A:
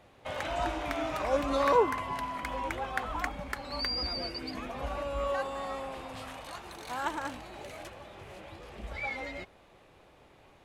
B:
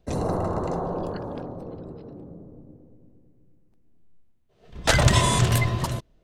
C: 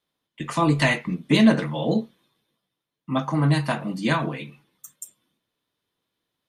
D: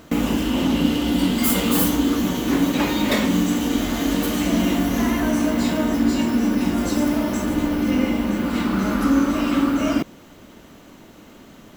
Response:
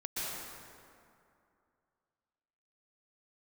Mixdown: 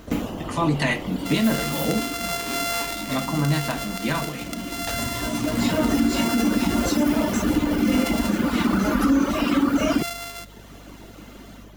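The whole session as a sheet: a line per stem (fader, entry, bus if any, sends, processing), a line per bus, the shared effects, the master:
−1.5 dB, 1.00 s, bus A, no send, samples sorted by size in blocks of 64 samples; tilt shelving filter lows −6 dB, about 1,100 Hz
−5.5 dB, 0.00 s, no bus, no send, downward compressor, threshold −25 dBFS, peak gain reduction 13 dB
−6.0 dB, 0.00 s, bus A, no send, no processing
−0.5 dB, 0.00 s, bus A, no send, reverb reduction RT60 1.3 s; notch filter 7,900 Hz, Q 15; automatic ducking −14 dB, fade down 0.30 s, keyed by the third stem
bus A: 0.0 dB, automatic gain control gain up to 5 dB; brickwall limiter −11 dBFS, peak gain reduction 8.5 dB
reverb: not used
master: mains hum 50 Hz, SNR 24 dB

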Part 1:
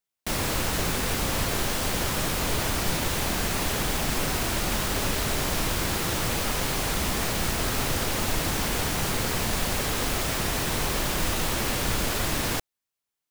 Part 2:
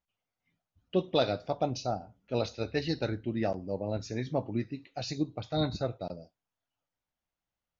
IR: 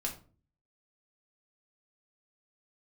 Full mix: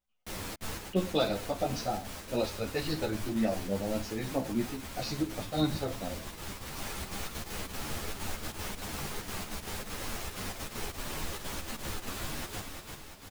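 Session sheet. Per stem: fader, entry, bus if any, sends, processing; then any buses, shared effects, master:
−9.0 dB, 0.00 s, no send, echo send −5 dB, gate pattern "x.xxxxx.xx.x.x" 194 BPM −60 dB; automatic ducking −10 dB, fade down 0.20 s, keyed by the second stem
−1.0 dB, 0.00 s, send −5.5 dB, no echo send, no processing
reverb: on, RT60 0.40 s, pre-delay 4 ms
echo: repeating echo 344 ms, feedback 56%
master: string-ensemble chorus

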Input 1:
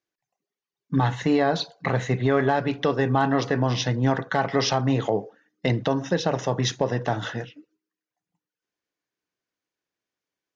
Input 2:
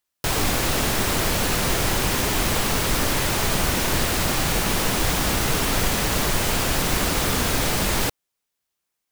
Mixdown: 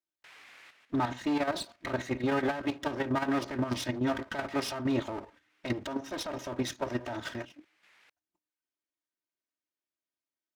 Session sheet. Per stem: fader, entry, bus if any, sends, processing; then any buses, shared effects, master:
−2.0 dB, 0.00 s, no send, lower of the sound and its delayed copy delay 3.2 ms; brickwall limiter −17 dBFS, peak gain reduction 5.5 dB
−18.0 dB, 0.00 s, no send, resonant band-pass 2,100 Hz, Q 2; automatic ducking −18 dB, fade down 0.25 s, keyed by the first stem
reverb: not used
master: high-pass filter 72 Hz; output level in coarse steps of 9 dB

